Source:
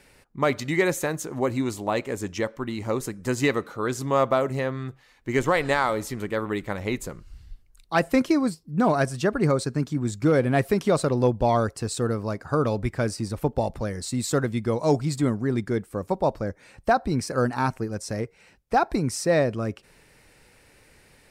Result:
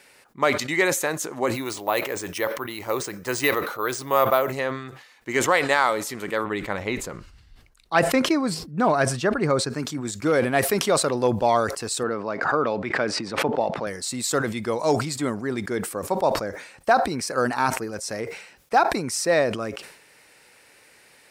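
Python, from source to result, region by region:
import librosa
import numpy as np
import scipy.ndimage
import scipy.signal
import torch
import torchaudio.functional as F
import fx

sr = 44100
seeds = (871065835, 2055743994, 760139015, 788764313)

y = fx.chain(x, sr, fx.peak_eq(hz=230.0, db=-8.0, octaves=0.36),
    fx.resample_bad(factor=3, down='filtered', up='hold'), at=(1.54, 4.53))
y = fx.chain(y, sr, fx.lowpass(hz=4000.0, slope=6),
    fx.low_shelf(hz=110.0, db=11.5), at=(6.44, 9.7))
y = fx.chain(y, sr, fx.bandpass_edges(low_hz=150.0, high_hz=3100.0),
    fx.pre_swell(db_per_s=61.0), at=(12.03, 13.87))
y = fx.highpass(y, sr, hz=630.0, slope=6)
y = fx.sustainer(y, sr, db_per_s=80.0)
y = y * librosa.db_to_amplitude(4.5)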